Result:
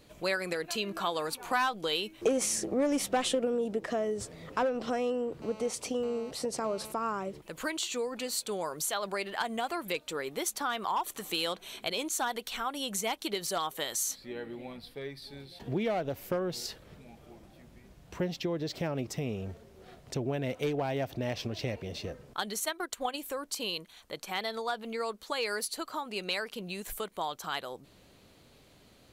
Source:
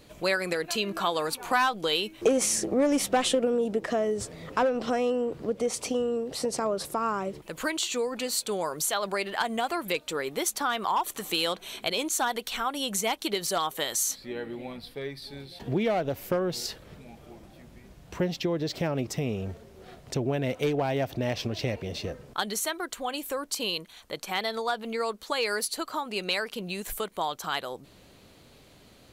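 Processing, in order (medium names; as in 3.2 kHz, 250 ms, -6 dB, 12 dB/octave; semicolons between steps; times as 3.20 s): 5.42–6.92 s: mobile phone buzz -44 dBFS; 22.60–23.20 s: transient shaper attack +7 dB, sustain -6 dB; trim -4.5 dB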